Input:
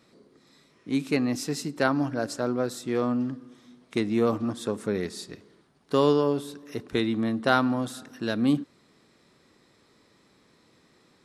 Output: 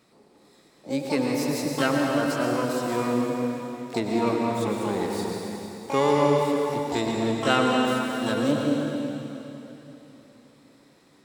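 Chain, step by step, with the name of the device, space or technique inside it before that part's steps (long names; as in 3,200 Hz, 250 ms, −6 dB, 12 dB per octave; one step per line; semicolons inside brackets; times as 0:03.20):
shimmer-style reverb (pitch-shifted copies added +12 semitones −6 dB; convolution reverb RT60 3.4 s, pre-delay 97 ms, DRR −0.5 dB)
level −2 dB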